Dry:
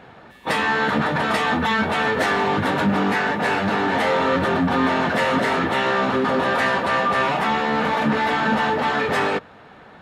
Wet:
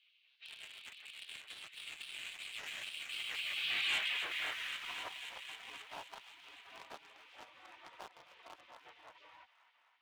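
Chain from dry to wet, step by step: median filter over 9 samples; Doppler pass-by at 3.96 s, 31 m/s, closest 2.9 m; distance through air 230 m; spectral gate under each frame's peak -20 dB weak; band-pass sweep 2.8 kHz -> 890 Hz, 4.21–5.11 s; waveshaping leveller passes 1; peaking EQ 1.5 kHz -9.5 dB 2.3 oct; feedback echo behind a high-pass 263 ms, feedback 65%, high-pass 1.6 kHz, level -12 dB; waveshaping leveller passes 1; three bands compressed up and down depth 70%; trim +18 dB

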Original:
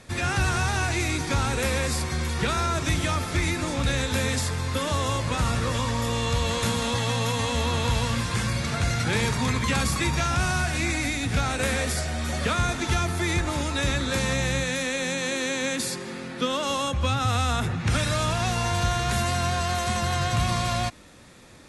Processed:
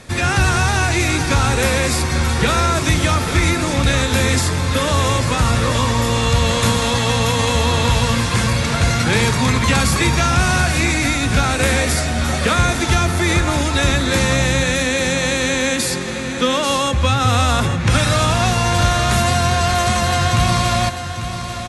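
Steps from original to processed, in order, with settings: feedback delay 844 ms, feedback 46%, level -10 dB; trim +8.5 dB

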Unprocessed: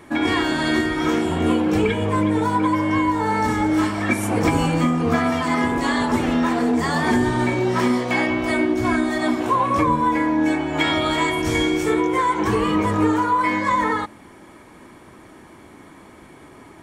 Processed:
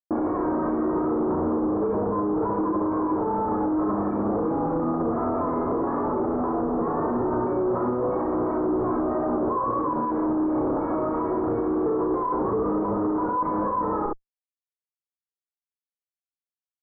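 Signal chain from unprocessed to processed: tilt EQ +2 dB/octave; Schmitt trigger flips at -32.5 dBFS; elliptic low-pass 1.2 kHz, stop band 70 dB; peaking EQ 370 Hz +8.5 dB 1.3 oct; early reflections 34 ms -6.5 dB, 68 ms -6.5 dB; peak limiter -18 dBFS, peak gain reduction 10 dB

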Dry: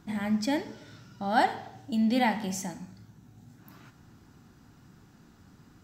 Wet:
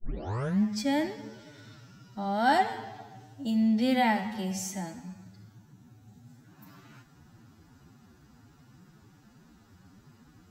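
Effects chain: tape start-up on the opening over 0.35 s; time stretch by phase-locked vocoder 1.8×

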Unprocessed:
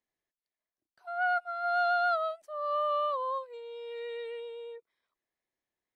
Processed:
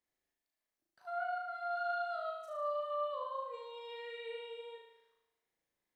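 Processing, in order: compression 6:1, threshold -39 dBFS, peak gain reduction 13.5 dB; flutter echo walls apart 6.4 m, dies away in 0.95 s; trim -2 dB

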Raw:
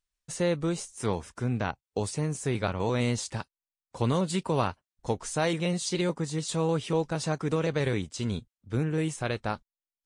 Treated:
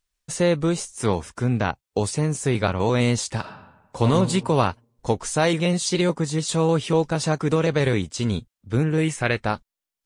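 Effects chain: 3.39–4.10 s: reverb throw, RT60 1 s, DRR 3 dB; 9.03–9.45 s: FFT filter 1.2 kHz 0 dB, 2 kHz +8 dB, 3.5 kHz -1 dB; trim +7 dB

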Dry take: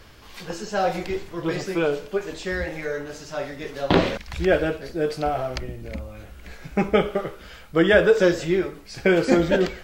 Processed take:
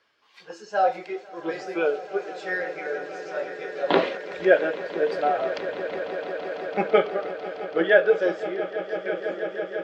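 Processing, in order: fade out at the end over 2.96 s; frequency weighting A; echo with a slow build-up 166 ms, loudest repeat 8, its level -13 dB; spectral contrast expander 1.5:1

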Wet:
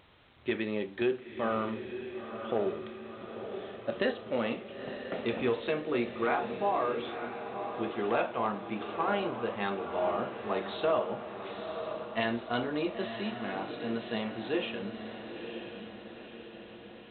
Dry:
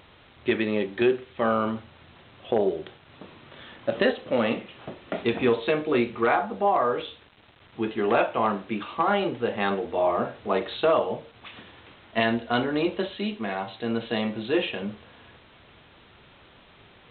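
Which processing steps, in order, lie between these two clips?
echo that smears into a reverb 957 ms, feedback 55%, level -8 dB; trim -7.5 dB

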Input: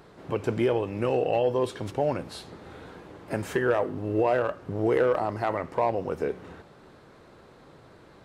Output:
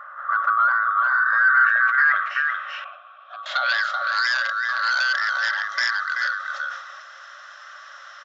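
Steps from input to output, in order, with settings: split-band scrambler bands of 1 kHz; peaking EQ 800 Hz -2.5 dB 0.77 oct; on a send: delay 382 ms -6 dB; on the sum: sine folder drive 7 dB, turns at -11.5 dBFS; in parallel at +2 dB: compression, threshold -29 dBFS, peak gain reduction 14 dB; on the sum: low-pass sweep 1.2 kHz -> 5.6 kHz, 1.10–4.29 s; 2.84–3.46 s: vowel filter a; FFT band-pass 530–7600 Hz; decay stretcher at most 71 dB/s; trim -9 dB

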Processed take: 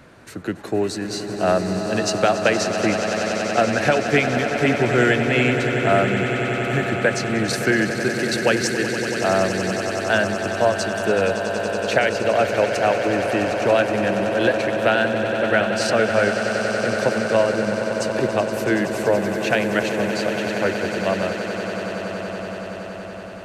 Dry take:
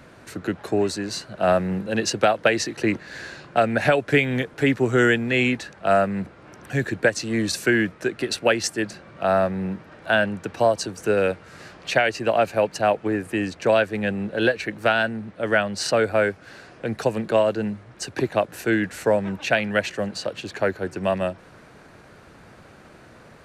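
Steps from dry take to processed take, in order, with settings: echo with a slow build-up 94 ms, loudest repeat 8, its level -12 dB

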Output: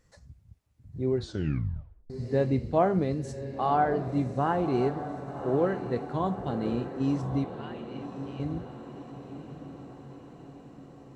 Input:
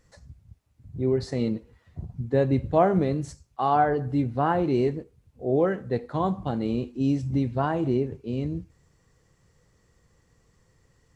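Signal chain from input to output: 7.44–8.40 s: band-pass filter 2.9 kHz, Q 2.4; echo that smears into a reverb 1082 ms, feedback 59%, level -10.5 dB; 1.14 s: tape stop 0.96 s; trim -3.5 dB

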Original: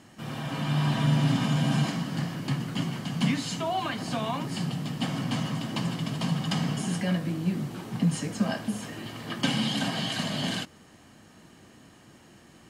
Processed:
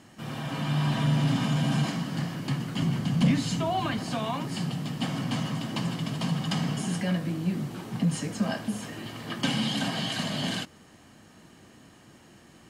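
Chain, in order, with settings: 2.82–3.99 s: bass shelf 230 Hz +10 dB; saturation -14.5 dBFS, distortion -20 dB

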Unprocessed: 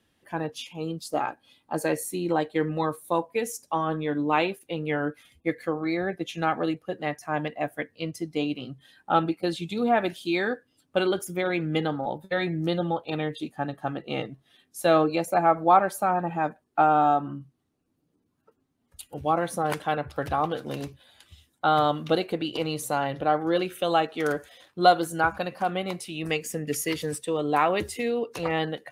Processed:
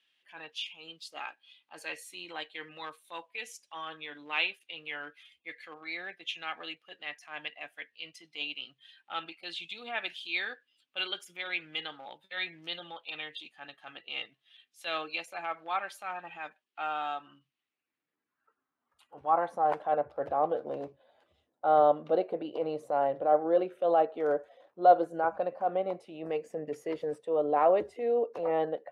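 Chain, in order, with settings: transient shaper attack -7 dB, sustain -1 dB; band-pass sweep 2.9 kHz -> 590 Hz, 17.42–20.06 s; trim +4.5 dB

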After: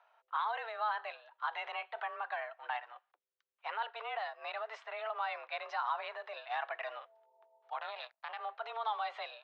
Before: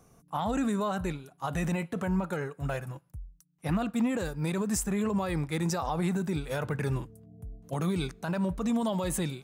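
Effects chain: 7.78–8.40 s: power-law waveshaper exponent 2; mistuned SSB +220 Hz 470–3600 Hz; trim -2 dB

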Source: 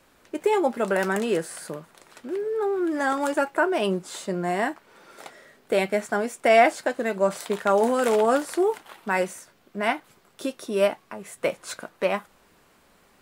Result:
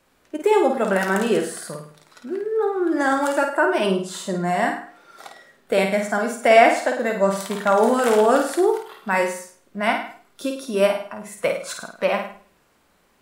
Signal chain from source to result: flutter echo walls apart 8.9 m, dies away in 0.57 s; spectral noise reduction 7 dB; trim +3 dB

